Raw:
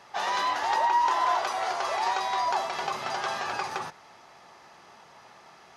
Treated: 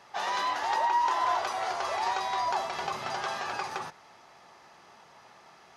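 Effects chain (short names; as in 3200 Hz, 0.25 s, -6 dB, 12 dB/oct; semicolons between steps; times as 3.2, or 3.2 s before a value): 1.21–3.25 low shelf 110 Hz +10 dB; gain -2.5 dB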